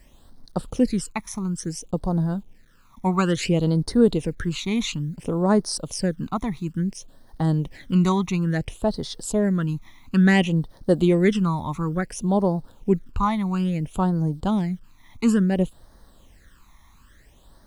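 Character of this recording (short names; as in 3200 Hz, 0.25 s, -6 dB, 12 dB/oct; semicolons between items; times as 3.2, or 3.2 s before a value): a quantiser's noise floor 10-bit, dither none; phasing stages 12, 0.58 Hz, lowest notch 490–2600 Hz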